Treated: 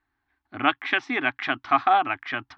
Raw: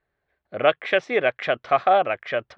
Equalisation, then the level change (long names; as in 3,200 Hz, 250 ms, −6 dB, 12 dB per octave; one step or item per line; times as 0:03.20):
drawn EQ curve 120 Hz 0 dB, 180 Hz −14 dB, 280 Hz +11 dB, 530 Hz −25 dB, 830 Hz +5 dB, 2,100 Hz 0 dB, 5,200 Hz +1 dB, 7,700 Hz −5 dB
0.0 dB